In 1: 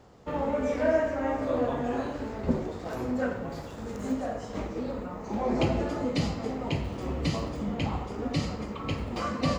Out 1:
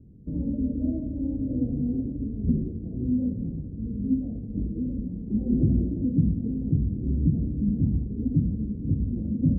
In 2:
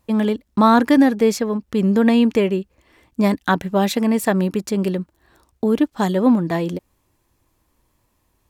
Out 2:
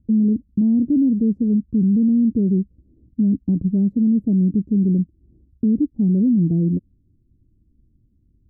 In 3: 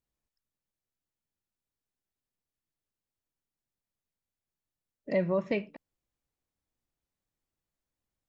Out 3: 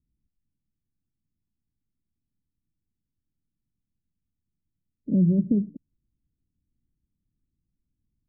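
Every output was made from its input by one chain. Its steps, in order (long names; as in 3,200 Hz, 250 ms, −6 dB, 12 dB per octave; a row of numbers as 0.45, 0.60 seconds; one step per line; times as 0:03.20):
inverse Chebyshev low-pass filter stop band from 1,200 Hz, stop band 70 dB
brickwall limiter −20.5 dBFS
normalise the peak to −12 dBFS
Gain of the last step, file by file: +8.5, +8.5, +14.0 decibels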